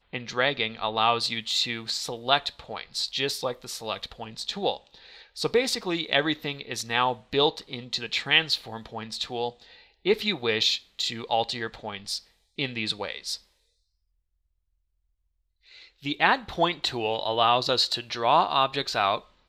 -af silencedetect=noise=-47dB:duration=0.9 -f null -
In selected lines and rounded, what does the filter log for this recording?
silence_start: 13.40
silence_end: 15.68 | silence_duration: 2.28